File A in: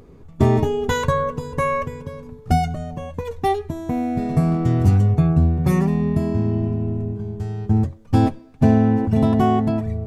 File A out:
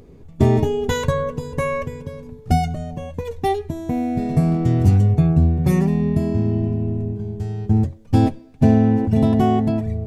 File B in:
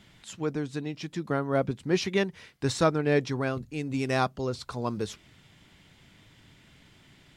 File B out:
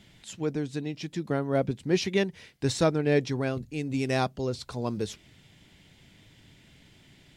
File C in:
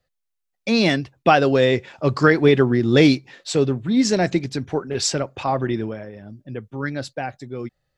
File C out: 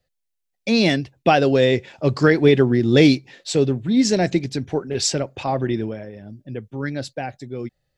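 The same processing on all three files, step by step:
parametric band 1,200 Hz −7 dB 0.84 octaves
level +1 dB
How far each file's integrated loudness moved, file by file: +0.5, 0.0, +0.5 LU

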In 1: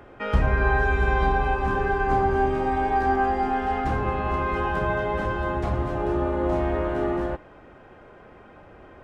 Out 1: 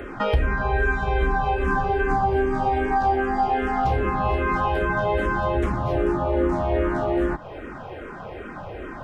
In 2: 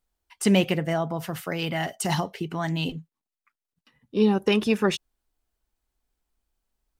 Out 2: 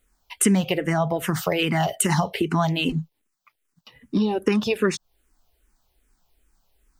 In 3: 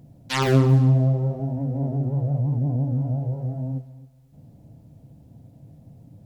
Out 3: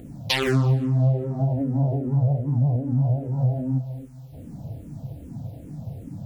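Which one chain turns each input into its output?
downward compressor 4 to 1, threshold −33 dBFS
frequency shifter mixed with the dry sound −2.5 Hz
loudness normalisation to −23 LKFS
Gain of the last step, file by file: +15.0, +15.5, +14.5 decibels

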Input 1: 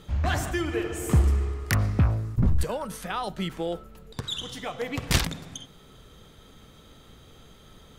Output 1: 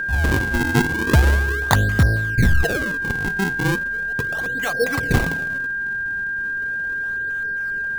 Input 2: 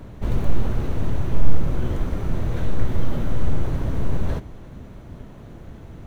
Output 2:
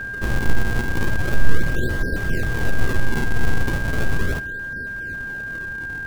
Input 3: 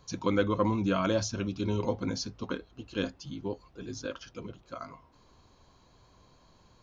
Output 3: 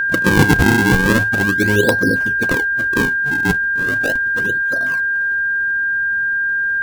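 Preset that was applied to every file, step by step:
auto-filter low-pass square 3.7 Hz 450–1,900 Hz
sample-and-hold swept by an LFO 42×, swing 160% 0.37 Hz
steady tone 1,600 Hz −27 dBFS
normalise the peak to −1.5 dBFS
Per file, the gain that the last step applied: +5.0, −0.5, +12.0 decibels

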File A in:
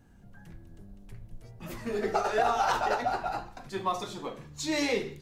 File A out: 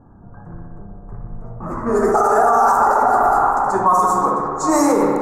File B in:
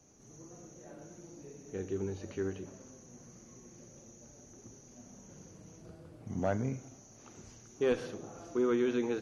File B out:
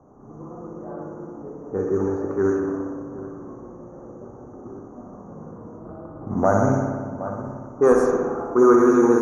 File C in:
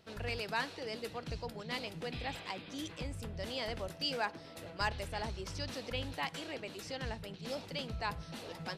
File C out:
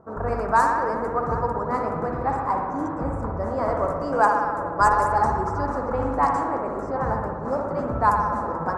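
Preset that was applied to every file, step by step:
drawn EQ curve 130 Hz 0 dB, 280 Hz +3 dB, 600 Hz +4 dB, 1,200 Hz +13 dB, 3,100 Hz −28 dB, 7,300 Hz +12 dB
delay that swaps between a low-pass and a high-pass 766 ms, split 1,800 Hz, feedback 62%, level −14 dB
spring reverb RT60 1.8 s, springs 59 ms, chirp 75 ms, DRR 1 dB
low-pass that shuts in the quiet parts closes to 930 Hz, open at −20.5 dBFS
boost into a limiter +15 dB
normalise the peak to −6 dBFS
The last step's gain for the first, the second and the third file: −5.0, −5.0, −5.0 decibels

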